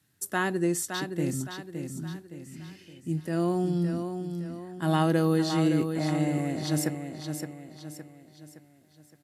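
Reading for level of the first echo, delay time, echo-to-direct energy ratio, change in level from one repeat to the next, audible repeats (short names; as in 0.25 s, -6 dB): -7.0 dB, 0.566 s, -6.0 dB, -7.5 dB, 4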